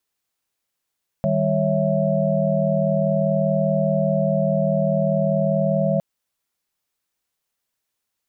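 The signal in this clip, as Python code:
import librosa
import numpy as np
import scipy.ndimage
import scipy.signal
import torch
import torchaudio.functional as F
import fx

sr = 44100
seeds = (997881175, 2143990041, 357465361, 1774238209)

y = fx.chord(sr, length_s=4.76, notes=(51, 55, 73, 76), wave='sine', level_db=-22.5)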